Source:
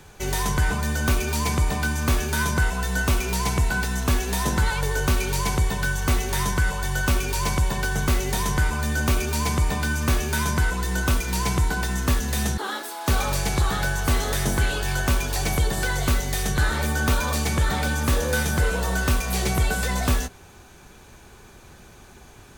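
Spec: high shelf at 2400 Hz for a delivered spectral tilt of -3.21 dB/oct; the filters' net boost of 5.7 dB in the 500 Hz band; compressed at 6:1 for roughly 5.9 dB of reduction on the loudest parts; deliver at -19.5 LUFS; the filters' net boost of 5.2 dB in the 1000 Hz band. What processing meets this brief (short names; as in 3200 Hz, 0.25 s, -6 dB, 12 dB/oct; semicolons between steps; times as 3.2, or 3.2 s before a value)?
bell 500 Hz +6 dB; bell 1000 Hz +3 dB; high shelf 2400 Hz +8.5 dB; compressor 6:1, threshold -20 dBFS; gain +4 dB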